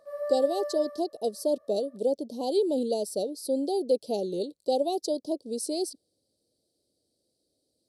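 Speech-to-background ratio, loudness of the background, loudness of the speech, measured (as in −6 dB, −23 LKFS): 6.5 dB, −35.5 LKFS, −29.0 LKFS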